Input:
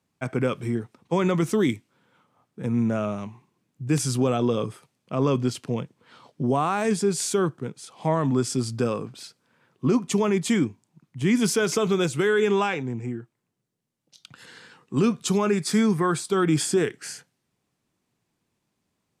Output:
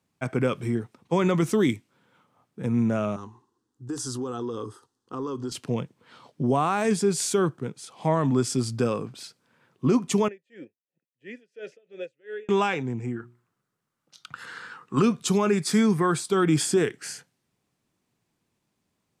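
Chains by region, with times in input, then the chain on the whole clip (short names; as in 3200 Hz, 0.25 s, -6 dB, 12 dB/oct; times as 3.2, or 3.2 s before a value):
3.16–5.52 LPF 8500 Hz + fixed phaser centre 620 Hz, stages 6 + compressor 4:1, threshold -28 dBFS
10.28–12.49 vowel filter e + dB-linear tremolo 2.9 Hz, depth 29 dB
13.16–15.02 bell 1300 Hz +14 dB 0.83 oct + notches 60/120/180/240/300/360 Hz
whole clip: dry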